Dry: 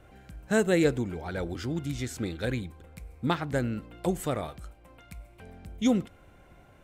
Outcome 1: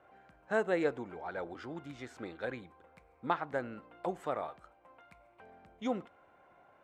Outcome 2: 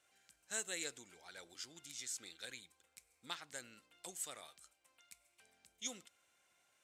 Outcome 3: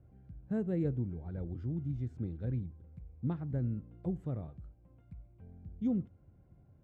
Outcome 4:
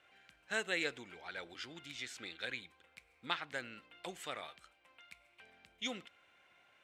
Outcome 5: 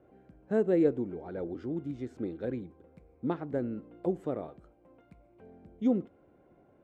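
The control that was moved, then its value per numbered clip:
band-pass filter, frequency: 930 Hz, 7.1 kHz, 110 Hz, 2.8 kHz, 360 Hz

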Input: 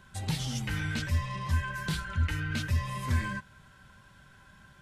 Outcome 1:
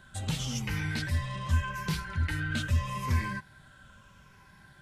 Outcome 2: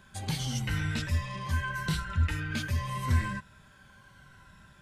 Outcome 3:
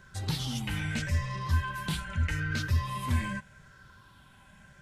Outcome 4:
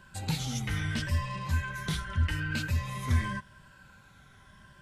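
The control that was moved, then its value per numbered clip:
drifting ripple filter, ripples per octave: 0.81, 2, 0.55, 1.3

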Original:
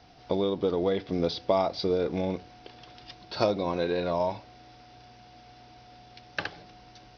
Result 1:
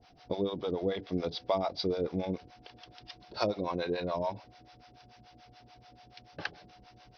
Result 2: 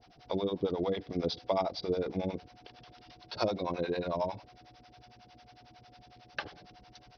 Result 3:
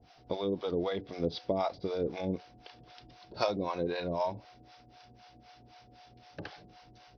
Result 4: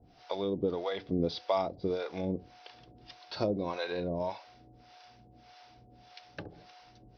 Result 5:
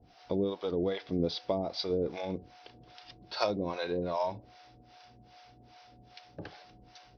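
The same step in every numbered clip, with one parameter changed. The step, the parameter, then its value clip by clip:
harmonic tremolo, rate: 6.9 Hz, 11 Hz, 3.9 Hz, 1.7 Hz, 2.5 Hz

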